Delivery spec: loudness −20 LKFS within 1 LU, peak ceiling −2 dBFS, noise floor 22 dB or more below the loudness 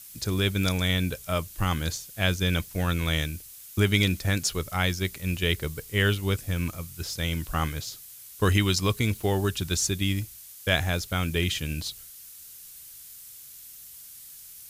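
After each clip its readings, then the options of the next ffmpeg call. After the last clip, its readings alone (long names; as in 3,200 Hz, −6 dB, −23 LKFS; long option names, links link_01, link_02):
background noise floor −46 dBFS; target noise floor −49 dBFS; integrated loudness −27.0 LKFS; sample peak −7.5 dBFS; target loudness −20.0 LKFS
→ -af "afftdn=noise_reduction=6:noise_floor=-46"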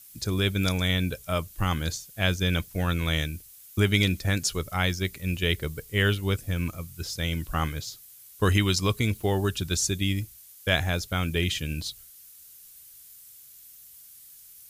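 background noise floor −50 dBFS; integrated loudness −27.0 LKFS; sample peak −8.0 dBFS; target loudness −20.0 LKFS
→ -af "volume=7dB,alimiter=limit=-2dB:level=0:latency=1"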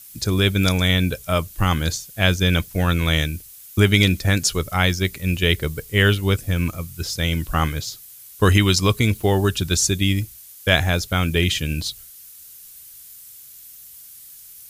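integrated loudness −20.0 LKFS; sample peak −2.0 dBFS; background noise floor −43 dBFS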